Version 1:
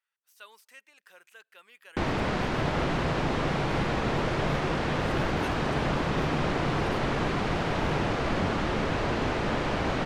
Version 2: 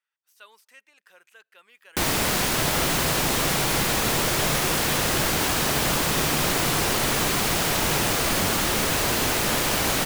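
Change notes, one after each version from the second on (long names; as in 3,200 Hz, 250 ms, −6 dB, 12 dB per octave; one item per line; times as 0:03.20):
first sound: remove head-to-tape spacing loss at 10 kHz 34 dB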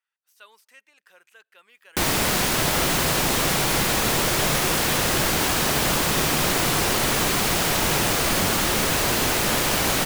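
first sound: send on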